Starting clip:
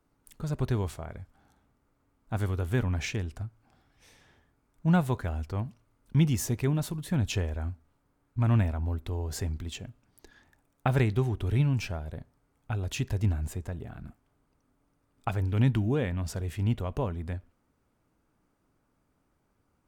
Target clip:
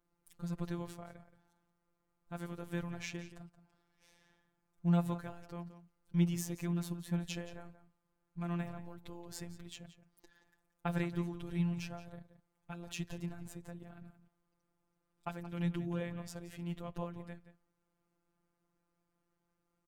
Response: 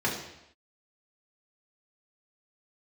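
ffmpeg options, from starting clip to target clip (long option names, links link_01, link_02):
-filter_complex "[0:a]asplit=2[link_01][link_02];[link_02]adelay=174.9,volume=-13dB,highshelf=frequency=4000:gain=-3.94[link_03];[link_01][link_03]amix=inputs=2:normalize=0,afftfilt=real='hypot(re,im)*cos(PI*b)':imag='0':win_size=1024:overlap=0.75,volume=-5.5dB"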